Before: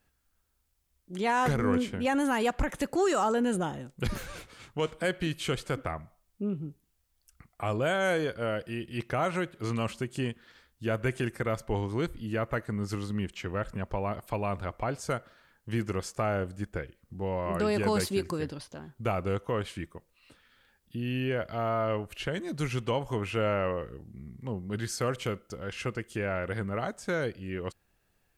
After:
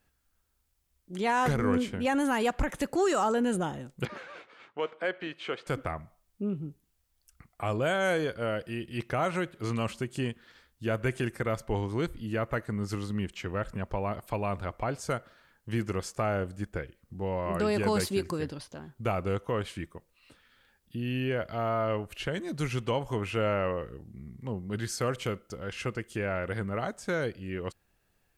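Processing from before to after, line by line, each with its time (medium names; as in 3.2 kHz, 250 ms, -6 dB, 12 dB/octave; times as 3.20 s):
4.05–5.67 s: band-pass 400–2600 Hz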